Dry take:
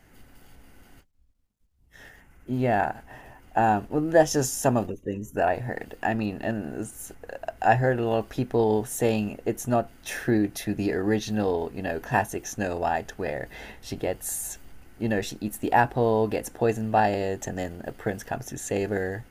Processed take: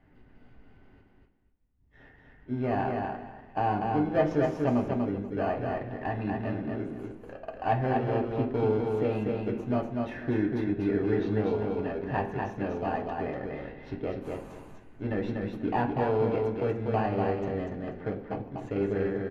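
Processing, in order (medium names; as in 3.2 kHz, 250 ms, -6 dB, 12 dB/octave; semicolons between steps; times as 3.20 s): time-frequency box 18.09–18.58 s, 1.3–12 kHz -26 dB; in parallel at -8 dB: sample-and-hold 24×; on the sum: saturation -10.5 dBFS, distortion -19 dB; distance through air 350 m; feedback delay 243 ms, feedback 20%, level -3.5 dB; on a send at -2 dB: reverberation RT60 0.65 s, pre-delay 3 ms; on the sum: trim -7.5 dB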